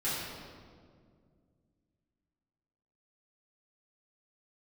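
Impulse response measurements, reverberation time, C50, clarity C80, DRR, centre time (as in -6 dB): 2.0 s, -1.5 dB, 0.5 dB, -11.5 dB, 0.113 s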